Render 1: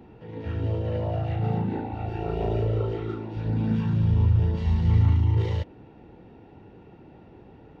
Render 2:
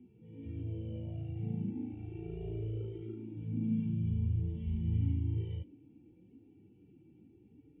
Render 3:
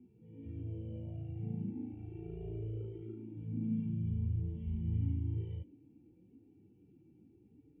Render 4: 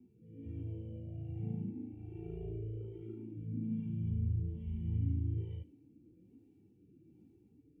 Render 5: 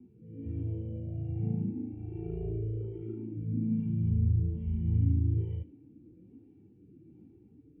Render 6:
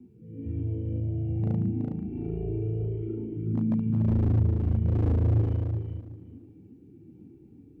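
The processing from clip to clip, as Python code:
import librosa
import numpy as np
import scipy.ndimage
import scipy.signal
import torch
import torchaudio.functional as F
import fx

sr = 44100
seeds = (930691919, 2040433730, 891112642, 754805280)

y1 = fx.hpss_only(x, sr, part='harmonic')
y1 = fx.formant_cascade(y1, sr, vowel='i')
y2 = fx.high_shelf(y1, sr, hz=2700.0, db=-10.0)
y2 = F.gain(torch.from_numpy(y2), -2.5).numpy()
y3 = fx.rotary(y2, sr, hz=1.2)
y3 = y3 + 10.0 ** (-21.5 / 20.0) * np.pad(y3, (int(75 * sr / 1000.0), 0))[:len(y3)]
y3 = F.gain(torch.from_numpy(y3), 1.0).numpy()
y4 = fx.air_absorb(y3, sr, metres=450.0)
y4 = F.gain(torch.from_numpy(y4), 7.5).numpy()
y5 = 10.0 ** (-23.5 / 20.0) * (np.abs((y4 / 10.0 ** (-23.5 / 20.0) + 3.0) % 4.0 - 2.0) - 1.0)
y5 = fx.echo_feedback(y5, sr, ms=372, feedback_pct=20, wet_db=-4.5)
y5 = F.gain(torch.from_numpy(y5), 4.0).numpy()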